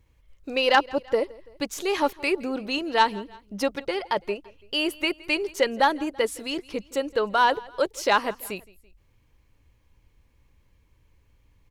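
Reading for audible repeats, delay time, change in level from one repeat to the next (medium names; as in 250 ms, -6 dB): 2, 167 ms, -5.5 dB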